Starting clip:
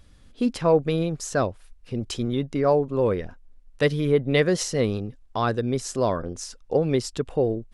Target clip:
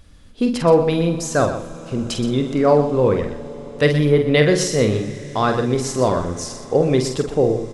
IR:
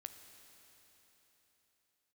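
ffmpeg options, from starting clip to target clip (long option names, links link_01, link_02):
-filter_complex "[0:a]asplit=2[link_01][link_02];[link_02]adelay=47,volume=-7dB[link_03];[link_01][link_03]amix=inputs=2:normalize=0,asplit=2[link_04][link_05];[1:a]atrim=start_sample=2205,asetrate=22932,aresample=44100,adelay=123[link_06];[link_05][link_06]afir=irnorm=-1:irlink=0,volume=-8dB[link_07];[link_04][link_07]amix=inputs=2:normalize=0,volume=5dB"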